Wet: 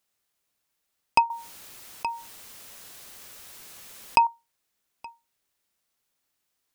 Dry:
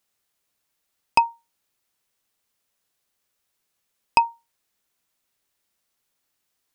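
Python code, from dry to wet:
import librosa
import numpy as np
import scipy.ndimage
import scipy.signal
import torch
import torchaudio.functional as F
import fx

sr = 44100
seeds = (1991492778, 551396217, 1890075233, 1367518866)

p1 = x + fx.echo_single(x, sr, ms=873, db=-23.0, dry=0)
p2 = fx.env_flatten(p1, sr, amount_pct=50, at=(1.3, 4.27))
y = p2 * 10.0 ** (-2.0 / 20.0)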